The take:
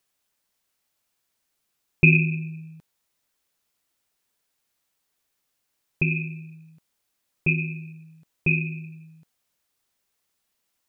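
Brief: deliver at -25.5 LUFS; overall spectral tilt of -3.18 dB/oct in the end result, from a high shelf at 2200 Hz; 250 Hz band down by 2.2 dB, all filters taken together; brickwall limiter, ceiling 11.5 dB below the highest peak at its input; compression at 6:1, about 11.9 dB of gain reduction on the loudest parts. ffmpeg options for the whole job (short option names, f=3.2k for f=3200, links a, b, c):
-af "equalizer=f=250:t=o:g=-5.5,highshelf=f=2.2k:g=4,acompressor=threshold=-23dB:ratio=6,volume=9dB,alimiter=limit=-13.5dB:level=0:latency=1"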